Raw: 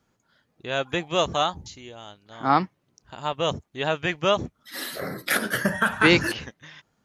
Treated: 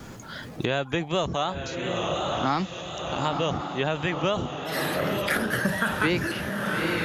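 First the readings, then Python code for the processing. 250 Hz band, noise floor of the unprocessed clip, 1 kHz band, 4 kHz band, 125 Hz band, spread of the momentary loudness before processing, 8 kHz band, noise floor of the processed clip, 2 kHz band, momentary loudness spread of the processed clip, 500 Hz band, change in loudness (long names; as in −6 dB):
0.0 dB, −72 dBFS, −2.0 dB, −2.5 dB, +2.5 dB, 21 LU, −2.5 dB, −41 dBFS, −2.0 dB, 7 LU, −0.5 dB, −2.5 dB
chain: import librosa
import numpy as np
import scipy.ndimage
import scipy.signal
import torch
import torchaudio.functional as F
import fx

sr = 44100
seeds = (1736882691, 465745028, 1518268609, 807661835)

p1 = x + fx.echo_diffused(x, sr, ms=916, feedback_pct=55, wet_db=-10.5, dry=0)
p2 = fx.vibrato(p1, sr, rate_hz=2.8, depth_cents=44.0)
p3 = fx.transient(p2, sr, attack_db=-1, sustain_db=5)
p4 = fx.low_shelf(p3, sr, hz=350.0, db=4.5)
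p5 = fx.band_squash(p4, sr, depth_pct=100)
y = p5 * 10.0 ** (-4.0 / 20.0)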